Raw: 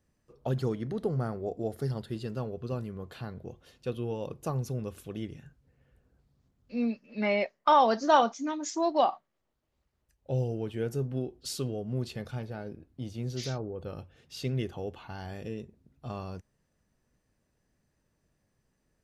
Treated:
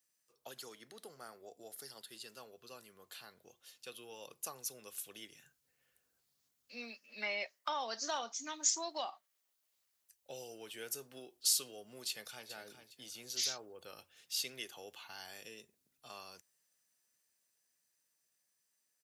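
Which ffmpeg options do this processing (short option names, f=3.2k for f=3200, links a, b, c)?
-filter_complex "[0:a]asplit=2[a][b];[b]afade=t=in:st=12.08:d=0.01,afade=t=out:st=12.49:d=0.01,aecho=0:1:410|820|1230:0.316228|0.0948683|0.0284605[c];[a][c]amix=inputs=2:normalize=0,acrossover=split=220|630[d][e][f];[d]acompressor=threshold=-44dB:ratio=4[g];[e]acompressor=threshold=-33dB:ratio=4[h];[f]acompressor=threshold=-34dB:ratio=4[i];[g][h][i]amix=inputs=3:normalize=0,aderivative,dynaudnorm=f=850:g=11:m=5dB,volume=5dB"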